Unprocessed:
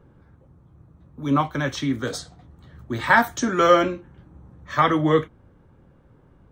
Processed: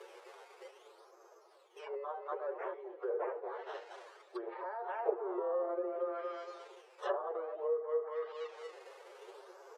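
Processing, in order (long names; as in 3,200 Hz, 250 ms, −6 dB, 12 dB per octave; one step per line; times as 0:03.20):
repeating echo 154 ms, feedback 38%, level −13 dB
on a send at −24 dB: convolution reverb, pre-delay 3 ms
on the sum: downward compressor 10 to 1, threshold −22 dBFS, peak gain reduction 12.5 dB
brickwall limiter −21.5 dBFS, peak gain reduction 10.5 dB
parametric band 6,400 Hz +12 dB 0.76 octaves
sample-and-hold swept by an LFO 13×, swing 100% 0.89 Hz
treble cut that deepens with the level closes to 560 Hz, closed at −27 dBFS
high-shelf EQ 2,700 Hz −7.5 dB
reversed playback
upward compression, threshold −34 dBFS
reversed playback
phase-vocoder stretch with locked phases 1.5×
linear-phase brick-wall high-pass 360 Hz
treble cut that deepens with the level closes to 1,700 Hz, closed at −33 dBFS
level +1 dB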